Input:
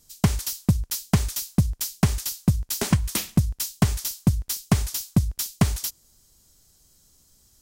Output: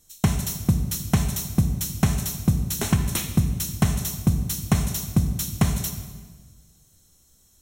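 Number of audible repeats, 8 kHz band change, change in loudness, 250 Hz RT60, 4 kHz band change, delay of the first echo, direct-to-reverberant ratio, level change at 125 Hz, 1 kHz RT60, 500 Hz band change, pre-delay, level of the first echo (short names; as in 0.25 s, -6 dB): none, 0.0 dB, +0.5 dB, 1.7 s, -1.5 dB, none, 5.0 dB, +0.5 dB, 1.4 s, -0.5 dB, 3 ms, none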